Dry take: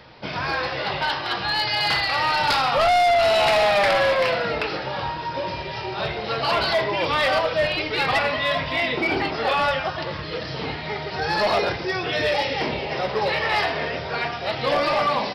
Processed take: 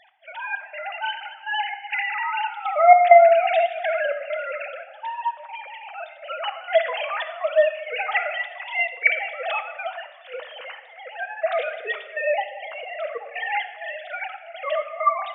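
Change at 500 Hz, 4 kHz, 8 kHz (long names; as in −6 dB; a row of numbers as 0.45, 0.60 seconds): +0.5 dB, −11.5 dB, below −35 dB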